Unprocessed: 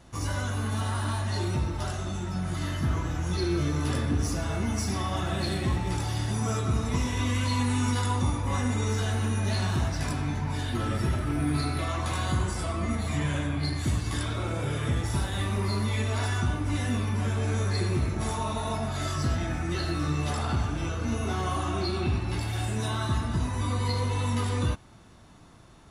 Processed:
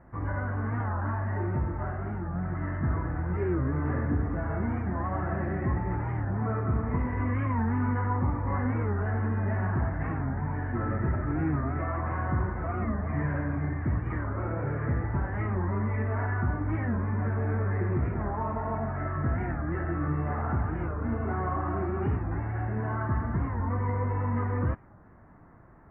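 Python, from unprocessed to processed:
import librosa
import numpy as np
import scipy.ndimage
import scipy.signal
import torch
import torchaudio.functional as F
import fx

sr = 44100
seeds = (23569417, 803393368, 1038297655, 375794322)

y = scipy.signal.sosfilt(scipy.signal.ellip(4, 1.0, 50, 1900.0, 'lowpass', fs=sr, output='sos'), x)
y = fx.record_warp(y, sr, rpm=45.0, depth_cents=160.0)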